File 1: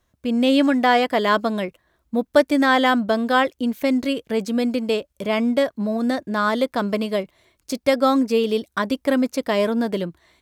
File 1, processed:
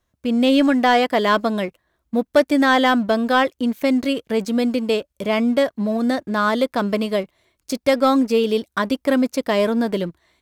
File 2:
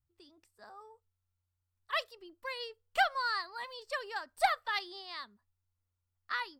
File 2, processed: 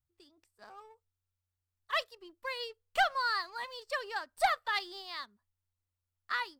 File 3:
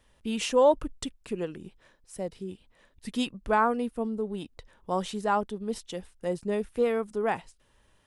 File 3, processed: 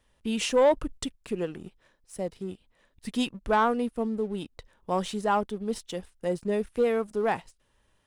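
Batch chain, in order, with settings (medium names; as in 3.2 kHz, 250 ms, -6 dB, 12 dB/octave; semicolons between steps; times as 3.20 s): waveshaping leveller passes 1; trim -2 dB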